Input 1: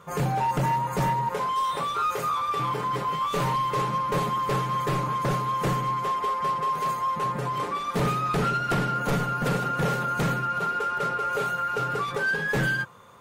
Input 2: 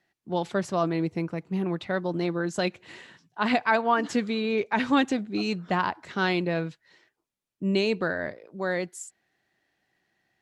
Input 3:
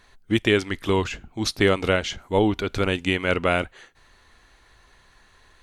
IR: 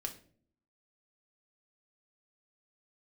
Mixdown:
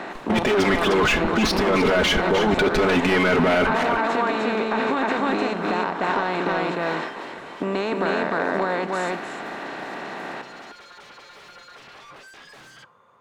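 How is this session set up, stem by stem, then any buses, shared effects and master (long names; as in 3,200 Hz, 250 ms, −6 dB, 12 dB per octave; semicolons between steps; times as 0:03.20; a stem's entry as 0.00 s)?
−11.0 dB, 0.00 s, bus A, send −14 dB, no echo send, wave folding −32 dBFS
0.0 dB, 0.00 s, bus A, send −18.5 dB, echo send −7.5 dB, compressor on every frequency bin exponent 0.4
−4.0 dB, 0.00 s, no bus, send −10 dB, echo send −10.5 dB, comb filter 4.7 ms, depth 99%; leveller curve on the samples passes 5; compressor whose output falls as the input rises −11 dBFS, ratio −0.5
bus A: 0.0 dB, downward compressor, threshold −26 dBFS, peak gain reduction 12 dB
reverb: on, RT60 0.50 s, pre-delay 4 ms
echo: single-tap delay 303 ms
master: mid-hump overdrive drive 14 dB, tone 1,000 Hz, clips at −1 dBFS; brickwall limiter −11.5 dBFS, peak gain reduction 7.5 dB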